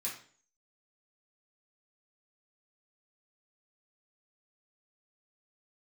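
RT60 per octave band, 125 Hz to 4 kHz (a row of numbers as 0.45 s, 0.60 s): 0.50 s, 0.55 s, 0.50 s, 0.45 s, 0.45 s, 0.45 s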